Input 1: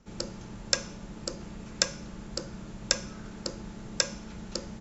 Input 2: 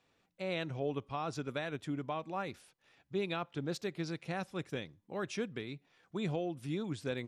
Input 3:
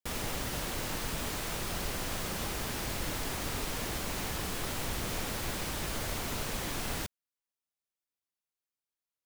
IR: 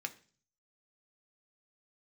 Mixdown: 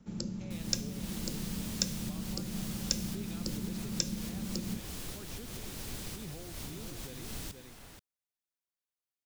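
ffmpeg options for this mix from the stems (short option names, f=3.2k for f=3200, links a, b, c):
-filter_complex "[0:a]equalizer=f=190:t=o:w=1.4:g=11.5,volume=-5dB[a];[1:a]volume=-9.5dB,asplit=3[b][c][d];[b]atrim=end=1.04,asetpts=PTS-STARTPTS,afade=t=out:st=1.036:d=0.004:c=hsin[e];[c]atrim=start=1.04:end=2.02,asetpts=PTS-STARTPTS,volume=0[f];[d]atrim=start=2.02,asetpts=PTS-STARTPTS,afade=t=in:d=0.004:c=hsin[g];[e][f][g]concat=n=3:v=0:a=1,asplit=3[h][i][j];[i]volume=-6dB[k];[2:a]adelay=450,volume=-4.5dB,asplit=2[l][m];[m]volume=-12dB[n];[j]apad=whole_len=428017[o];[l][o]sidechaincompress=threshold=-49dB:ratio=4:attack=16:release=190[p];[k][n]amix=inputs=2:normalize=0,aecho=0:1:479:1[q];[a][h][p][q]amix=inputs=4:normalize=0,acrossover=split=360|3000[r][s][t];[s]acompressor=threshold=-56dB:ratio=2.5[u];[r][u][t]amix=inputs=3:normalize=0"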